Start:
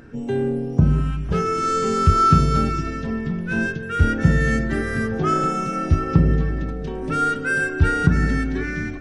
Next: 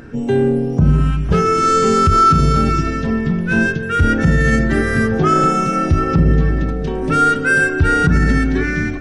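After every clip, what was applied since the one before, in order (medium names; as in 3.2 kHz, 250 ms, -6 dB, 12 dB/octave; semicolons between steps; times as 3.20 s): peak limiter -12 dBFS, peak gain reduction 9.5 dB; trim +7.5 dB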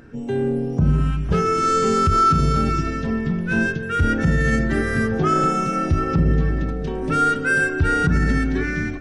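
level rider; trim -8.5 dB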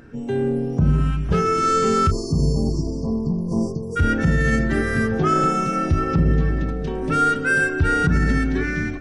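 spectral selection erased 2.11–3.97 s, 1.2–4.3 kHz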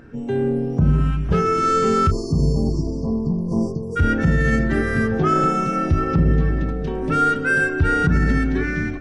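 treble shelf 4.2 kHz -6.5 dB; trim +1 dB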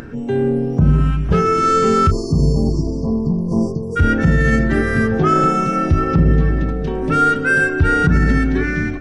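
upward compressor, threshold -30 dBFS; trim +3.5 dB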